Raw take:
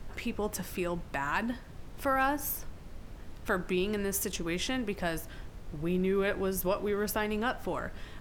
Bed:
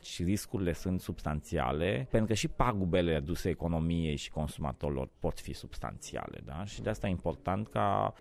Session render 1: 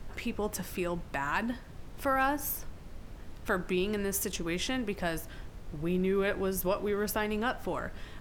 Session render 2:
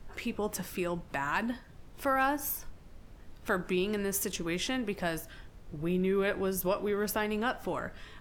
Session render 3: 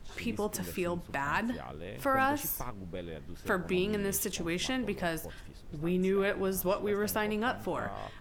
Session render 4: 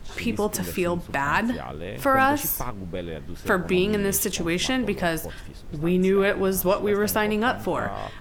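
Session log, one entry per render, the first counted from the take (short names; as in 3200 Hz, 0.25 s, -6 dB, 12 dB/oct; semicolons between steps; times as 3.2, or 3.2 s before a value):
nothing audible
noise print and reduce 6 dB
add bed -12 dB
gain +8.5 dB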